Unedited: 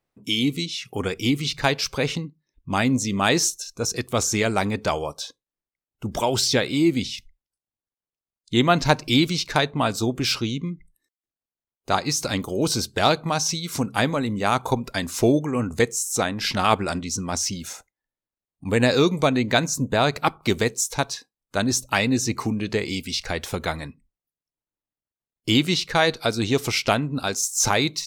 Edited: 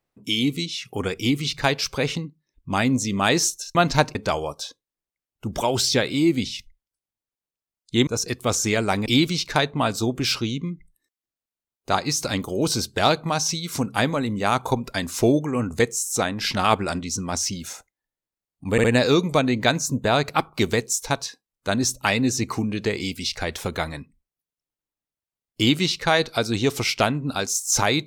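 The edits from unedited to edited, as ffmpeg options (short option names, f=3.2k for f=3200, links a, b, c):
-filter_complex "[0:a]asplit=7[a][b][c][d][e][f][g];[a]atrim=end=3.752[h];[b]atrim=start=8.658:end=9.062[i];[c]atrim=start=4.738:end=8.662[j];[d]atrim=start=3.748:end=4.742[k];[e]atrim=start=9.058:end=18.782[l];[f]atrim=start=18.718:end=18.782[m];[g]atrim=start=18.718[n];[h][i]acrossfade=d=0.004:c1=hsin:c2=hsin[o];[o][j]acrossfade=d=0.004:c1=hsin:c2=hsin[p];[p][k]acrossfade=d=0.004:c1=hsin:c2=hsin[q];[q][l]acrossfade=d=0.004:c1=hsin:c2=hsin[r];[r][m]acrossfade=d=0.004:c1=hsin:c2=hsin[s];[s][n]acrossfade=d=0.004:c1=hsin:c2=hsin"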